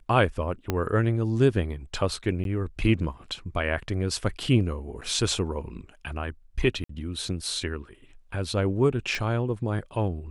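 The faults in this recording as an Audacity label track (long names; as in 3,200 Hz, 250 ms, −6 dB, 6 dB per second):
0.700000	0.700000	click −11 dBFS
2.440000	2.450000	drop-out 12 ms
5.010000	5.020000	drop-out 6 ms
6.840000	6.890000	drop-out 54 ms
9.150000	9.150000	click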